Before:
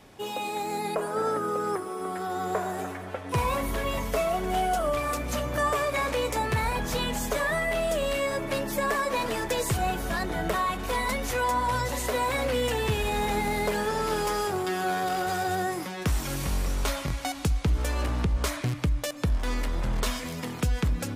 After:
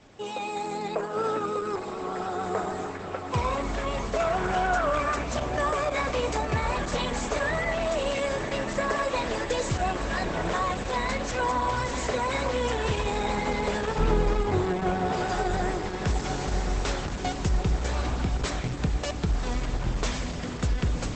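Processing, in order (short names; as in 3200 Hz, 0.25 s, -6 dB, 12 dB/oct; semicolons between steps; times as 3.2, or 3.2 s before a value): 13.98–15.13 RIAA curve playback; diffused feedback echo 1.065 s, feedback 64%, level -8 dB; vibrato 6.7 Hz 35 cents; 4.2–5.23 bell 1500 Hz +11.5 dB 0.48 oct; Opus 12 kbps 48000 Hz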